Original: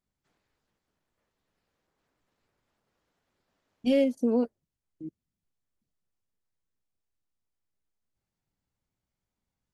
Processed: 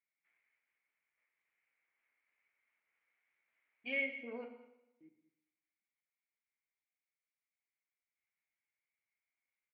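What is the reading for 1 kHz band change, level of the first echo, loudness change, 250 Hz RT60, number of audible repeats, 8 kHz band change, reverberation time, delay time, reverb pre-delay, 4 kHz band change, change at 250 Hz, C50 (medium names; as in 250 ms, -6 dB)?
-13.5 dB, -20.0 dB, -12.5 dB, 0.85 s, 1, no reading, 0.95 s, 202 ms, 8 ms, -9.5 dB, -23.5 dB, 8.0 dB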